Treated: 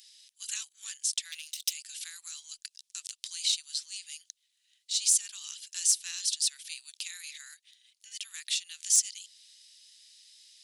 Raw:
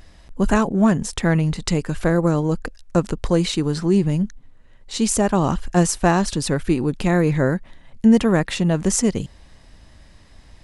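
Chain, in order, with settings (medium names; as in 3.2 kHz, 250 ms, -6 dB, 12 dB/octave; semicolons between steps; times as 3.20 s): 1.32–1.73 s: comb filter that takes the minimum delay 0.35 ms; inverse Chebyshev high-pass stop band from 580 Hz, stop band 80 dB; 7.00–8.42 s: transient shaper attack -8 dB, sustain -4 dB; in parallel at -2 dB: compression, threshold -42 dBFS, peak gain reduction 22 dB; on the sum: saturation -10.5 dBFS, distortion -22 dB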